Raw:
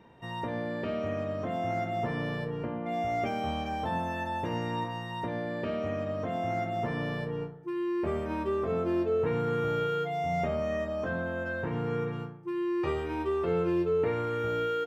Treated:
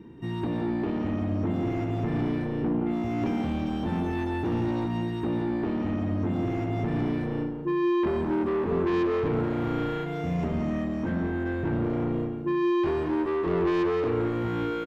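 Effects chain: resonant low shelf 450 Hz +9.5 dB, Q 3; soft clip -24.5 dBFS, distortion -6 dB; loudspeakers at several distances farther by 60 m -7 dB, 88 m -12 dB

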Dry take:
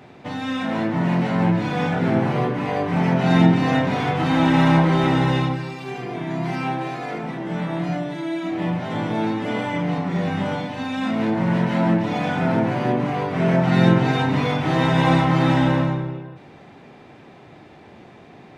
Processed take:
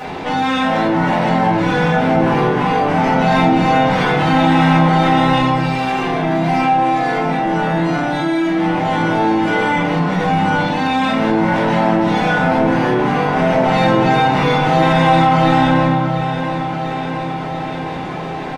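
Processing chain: bell 96 Hz -8 dB 2.8 oct; on a send: feedback echo 0.692 s, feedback 58%, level -17 dB; on the sum: shoebox room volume 240 m³, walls furnished, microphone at 5.5 m; fast leveller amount 50%; gain -5.5 dB

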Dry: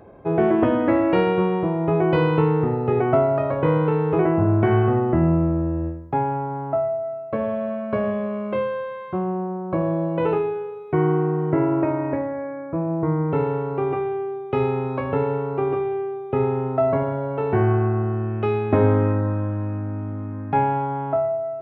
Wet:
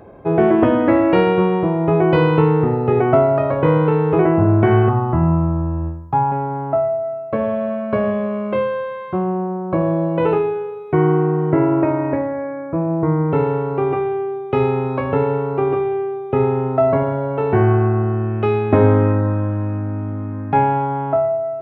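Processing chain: 4.89–6.32 ten-band EQ 125 Hz +3 dB, 250 Hz -5 dB, 500 Hz -11 dB, 1000 Hz +9 dB, 2000 Hz -9 dB; gain +4.5 dB

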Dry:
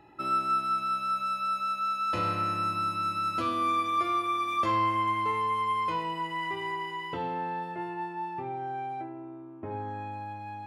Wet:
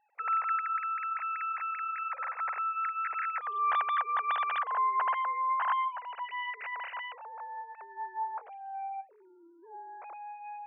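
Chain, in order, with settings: sine-wave speech; gain -3 dB

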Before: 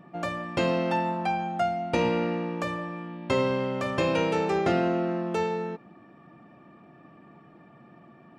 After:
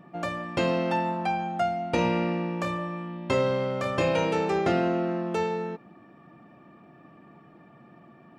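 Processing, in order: 1.95–4.25 doubler 29 ms -7 dB

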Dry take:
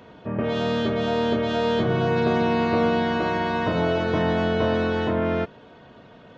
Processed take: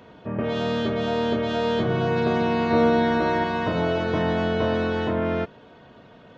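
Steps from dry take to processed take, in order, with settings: 2.69–3.44 doubler 13 ms -5 dB; gain -1 dB

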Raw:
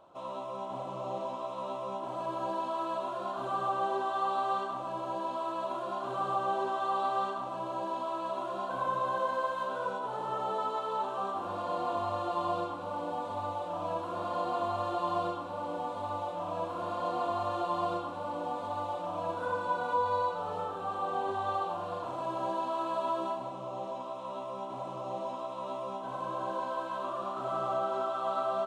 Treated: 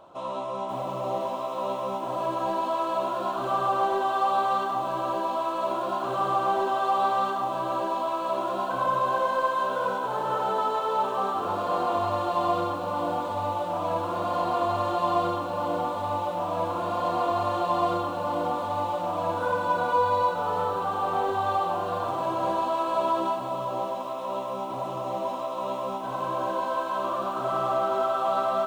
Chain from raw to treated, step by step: in parallel at -10 dB: soft clip -34.5 dBFS, distortion -9 dB; on the sum: lo-fi delay 0.538 s, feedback 35%, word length 9-bit, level -8.5 dB; gain +5 dB

